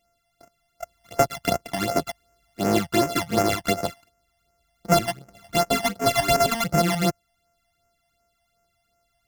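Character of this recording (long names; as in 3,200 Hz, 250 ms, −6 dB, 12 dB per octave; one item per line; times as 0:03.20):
a buzz of ramps at a fixed pitch in blocks of 64 samples
phaser sweep stages 12, 2.7 Hz, lowest notch 400–3,800 Hz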